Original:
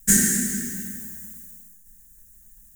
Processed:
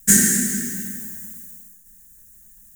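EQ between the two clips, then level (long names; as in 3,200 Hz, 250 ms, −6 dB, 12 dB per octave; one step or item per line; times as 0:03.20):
low-shelf EQ 61 Hz −9.5 dB
+3.5 dB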